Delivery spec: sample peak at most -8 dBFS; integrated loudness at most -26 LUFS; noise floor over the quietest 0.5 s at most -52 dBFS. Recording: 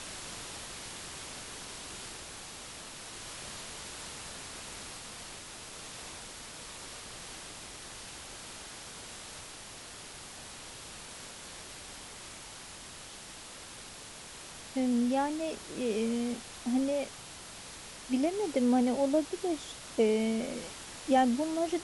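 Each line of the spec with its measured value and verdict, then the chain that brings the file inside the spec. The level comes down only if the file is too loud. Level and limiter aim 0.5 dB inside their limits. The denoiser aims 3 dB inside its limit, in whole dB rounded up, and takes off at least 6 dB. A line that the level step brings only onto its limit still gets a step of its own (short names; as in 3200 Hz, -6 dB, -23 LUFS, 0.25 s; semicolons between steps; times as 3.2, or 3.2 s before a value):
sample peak -15.5 dBFS: OK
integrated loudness -35.5 LUFS: OK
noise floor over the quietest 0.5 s -47 dBFS: fail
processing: denoiser 8 dB, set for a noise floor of -47 dBFS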